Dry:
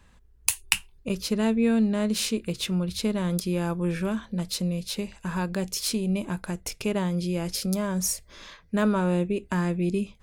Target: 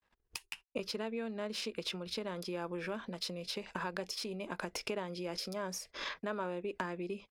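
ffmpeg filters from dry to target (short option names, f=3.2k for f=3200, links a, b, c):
-filter_complex "[0:a]equalizer=f=5.2k:w=5.2:g=7.5,acompressor=threshold=-37dB:ratio=16,agate=range=-46dB:threshold=-53dB:ratio=16:detection=peak,acrossover=split=310 4000:gain=0.141 1 0.224[a][b][c];[a][b][c]amix=inputs=3:normalize=0,asoftclip=type=hard:threshold=-31dB,atempo=1.4,volume=8dB"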